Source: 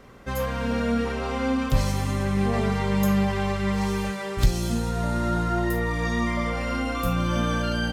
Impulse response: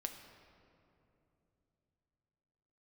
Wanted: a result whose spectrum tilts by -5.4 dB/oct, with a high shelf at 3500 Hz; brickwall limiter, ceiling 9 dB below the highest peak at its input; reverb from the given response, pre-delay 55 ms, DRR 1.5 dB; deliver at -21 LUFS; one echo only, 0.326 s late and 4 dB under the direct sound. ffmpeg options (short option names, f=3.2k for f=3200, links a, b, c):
-filter_complex "[0:a]highshelf=f=3.5k:g=-7.5,alimiter=limit=-17.5dB:level=0:latency=1,aecho=1:1:326:0.631,asplit=2[a][b];[1:a]atrim=start_sample=2205,adelay=55[c];[b][c]afir=irnorm=-1:irlink=0,volume=0dB[d];[a][d]amix=inputs=2:normalize=0,volume=2dB"